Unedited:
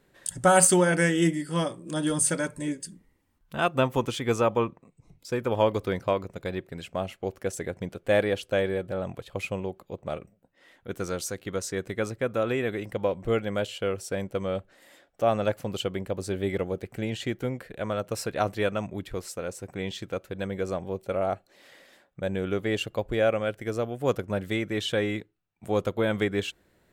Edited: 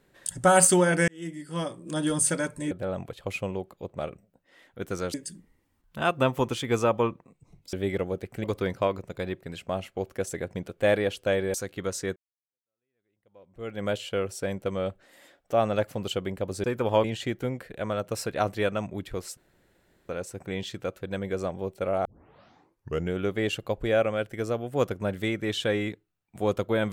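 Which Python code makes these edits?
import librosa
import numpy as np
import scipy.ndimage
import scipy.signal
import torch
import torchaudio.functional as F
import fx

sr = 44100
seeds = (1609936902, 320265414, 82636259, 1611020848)

y = fx.edit(x, sr, fx.fade_in_span(start_s=1.08, length_s=0.82),
    fx.swap(start_s=5.3, length_s=0.4, other_s=16.33, other_length_s=0.71),
    fx.move(start_s=8.8, length_s=2.43, to_s=2.71),
    fx.fade_in_span(start_s=11.85, length_s=1.68, curve='exp'),
    fx.insert_room_tone(at_s=19.37, length_s=0.72),
    fx.tape_start(start_s=21.33, length_s=1.1), tone=tone)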